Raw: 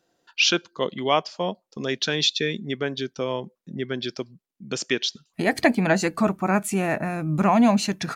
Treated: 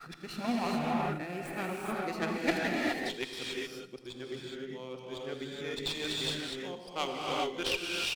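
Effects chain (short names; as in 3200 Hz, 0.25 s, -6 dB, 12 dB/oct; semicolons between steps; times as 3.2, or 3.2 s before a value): whole clip reversed; HPF 130 Hz 24 dB/oct; bell 6700 Hz -14 dB 0.32 oct; on a send: feedback echo 81 ms, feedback 59%, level -16.5 dB; on the sum: added harmonics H 3 -14 dB, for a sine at -6 dBFS; thirty-one-band EQ 200 Hz -10 dB, 630 Hz -7 dB, 1000 Hz -6 dB, 1600 Hz -4 dB; non-linear reverb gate 0.44 s rising, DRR -3 dB; running maximum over 3 samples; gain -6.5 dB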